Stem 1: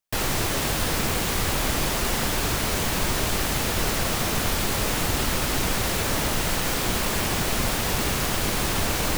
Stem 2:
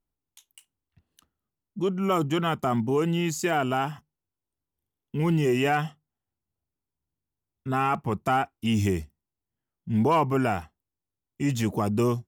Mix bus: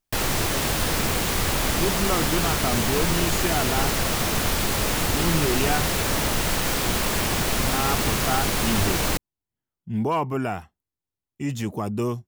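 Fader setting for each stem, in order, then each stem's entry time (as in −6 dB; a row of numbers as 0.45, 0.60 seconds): +1.0, −2.0 decibels; 0.00, 0.00 seconds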